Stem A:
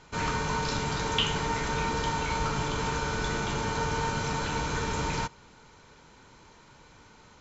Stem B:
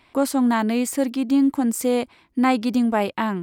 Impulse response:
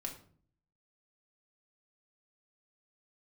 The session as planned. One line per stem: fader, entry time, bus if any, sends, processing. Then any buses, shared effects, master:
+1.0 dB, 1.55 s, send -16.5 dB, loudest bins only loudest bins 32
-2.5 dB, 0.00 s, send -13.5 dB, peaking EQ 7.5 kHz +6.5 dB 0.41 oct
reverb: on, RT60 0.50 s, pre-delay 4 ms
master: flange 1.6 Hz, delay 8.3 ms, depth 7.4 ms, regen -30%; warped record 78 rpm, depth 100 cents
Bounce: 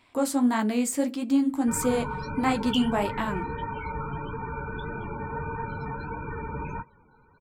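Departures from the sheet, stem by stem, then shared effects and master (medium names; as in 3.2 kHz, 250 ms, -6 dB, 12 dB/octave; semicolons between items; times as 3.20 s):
stem A: send off; master: missing warped record 78 rpm, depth 100 cents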